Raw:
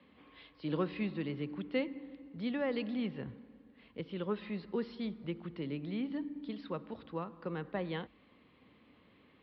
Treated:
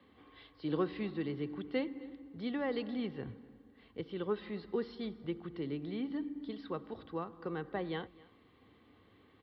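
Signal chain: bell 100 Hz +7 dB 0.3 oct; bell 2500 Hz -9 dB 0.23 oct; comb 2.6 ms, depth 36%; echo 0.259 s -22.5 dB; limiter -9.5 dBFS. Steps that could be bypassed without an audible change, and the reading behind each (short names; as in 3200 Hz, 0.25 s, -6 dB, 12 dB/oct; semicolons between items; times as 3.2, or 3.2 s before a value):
limiter -9.5 dBFS: input peak -22.0 dBFS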